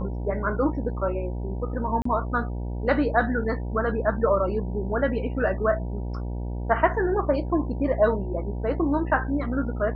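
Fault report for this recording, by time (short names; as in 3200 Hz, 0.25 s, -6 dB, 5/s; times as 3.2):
buzz 60 Hz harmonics 16 -30 dBFS
2.02–2.05 gap 34 ms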